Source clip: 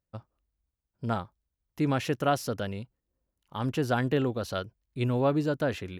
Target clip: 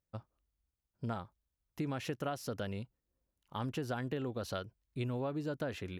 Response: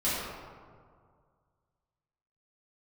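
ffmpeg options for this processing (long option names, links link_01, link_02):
-af "acompressor=threshold=-31dB:ratio=6,volume=-3dB"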